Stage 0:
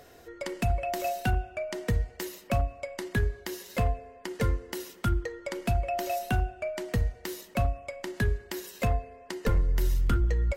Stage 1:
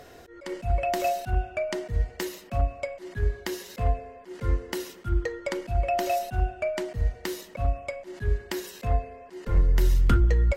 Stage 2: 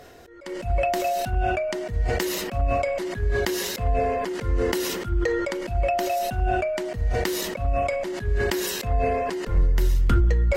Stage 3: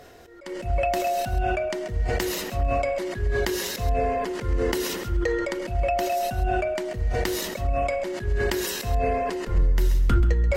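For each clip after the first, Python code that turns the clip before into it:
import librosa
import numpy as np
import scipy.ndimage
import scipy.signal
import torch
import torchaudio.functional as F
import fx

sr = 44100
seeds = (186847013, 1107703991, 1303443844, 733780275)

y1 = fx.high_shelf(x, sr, hz=8800.0, db=-7.0)
y1 = fx.auto_swell(y1, sr, attack_ms=131.0)
y1 = F.gain(torch.from_numpy(y1), 5.0).numpy()
y2 = fx.sustainer(y1, sr, db_per_s=23.0)
y3 = y2 + 10.0 ** (-12.5 / 20.0) * np.pad(y2, (int(133 * sr / 1000.0), 0))[:len(y2)]
y3 = F.gain(torch.from_numpy(y3), -1.0).numpy()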